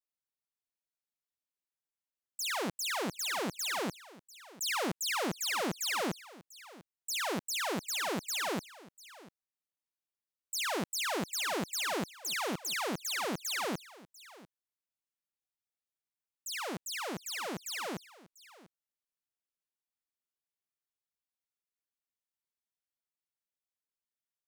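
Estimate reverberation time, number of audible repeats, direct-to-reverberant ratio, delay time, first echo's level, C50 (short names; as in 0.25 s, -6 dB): none, 1, none, 0.695 s, -19.5 dB, none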